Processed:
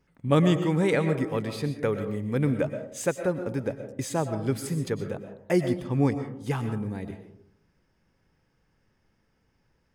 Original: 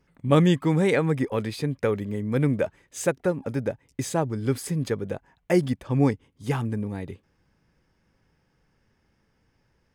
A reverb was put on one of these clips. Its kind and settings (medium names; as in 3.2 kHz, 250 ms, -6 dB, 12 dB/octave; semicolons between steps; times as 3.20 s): algorithmic reverb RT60 0.67 s, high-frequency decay 0.35×, pre-delay 80 ms, DRR 8 dB; trim -2.5 dB